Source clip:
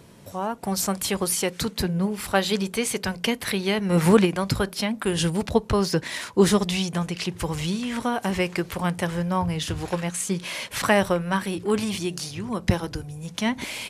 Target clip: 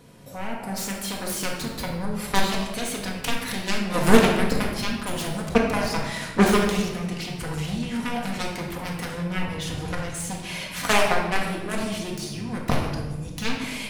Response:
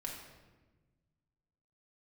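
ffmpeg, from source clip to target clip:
-filter_complex "[0:a]aeval=exprs='0.596*(cos(1*acos(clip(val(0)/0.596,-1,1)))-cos(1*PI/2))+0.133*(cos(5*acos(clip(val(0)/0.596,-1,1)))-cos(5*PI/2))+0.266*(cos(7*acos(clip(val(0)/0.596,-1,1)))-cos(7*PI/2))':c=same[s0];[1:a]atrim=start_sample=2205[s1];[s0][s1]afir=irnorm=-1:irlink=0,volume=1.12"

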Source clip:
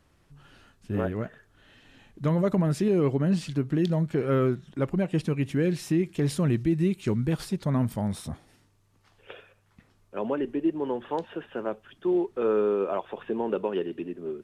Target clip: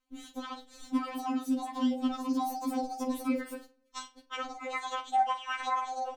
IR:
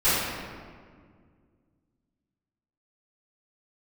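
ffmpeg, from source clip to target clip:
-filter_complex "[0:a]lowpass=6200,bandreject=f=60:t=h:w=6,bandreject=f=120:t=h:w=6,bandreject=f=180:t=h:w=6,bandreject=f=240:t=h:w=6,bandreject=f=300:t=h:w=6,bandreject=f=360:t=h:w=6,agate=range=0.0631:threshold=0.00158:ratio=16:detection=peak,equalizer=f=77:t=o:w=0.67:g=11.5,acompressor=threshold=0.0158:ratio=6,afreqshift=-25,asplit=2[s0][s1];[s1]adelay=102,lowpass=f=3200:p=1,volume=0.251,asplit=2[s2][s3];[s3]adelay=102,lowpass=f=3200:p=1,volume=0.28,asplit=2[s4][s5];[s5]adelay=102,lowpass=f=3200:p=1,volume=0.28[s6];[s0][s2][s4][s6]amix=inputs=4:normalize=0,asplit=2[s7][s8];[1:a]atrim=start_sample=2205[s9];[s8][s9]afir=irnorm=-1:irlink=0,volume=0.00841[s10];[s7][s10]amix=inputs=2:normalize=0,asetrate=103194,aresample=44100,afftfilt=real='re*3.46*eq(mod(b,12),0)':imag='im*3.46*eq(mod(b,12),0)':win_size=2048:overlap=0.75,volume=2.51"

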